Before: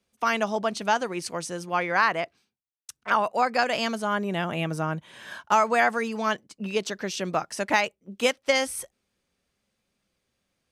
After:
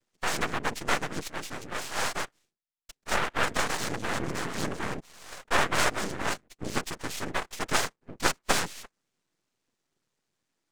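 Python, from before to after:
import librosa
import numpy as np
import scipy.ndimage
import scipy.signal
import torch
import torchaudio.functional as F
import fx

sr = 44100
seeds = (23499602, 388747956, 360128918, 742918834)

y = fx.highpass(x, sr, hz=1400.0, slope=6, at=(1.73, 2.15))
y = fx.noise_vocoder(y, sr, seeds[0], bands=3)
y = np.maximum(y, 0.0)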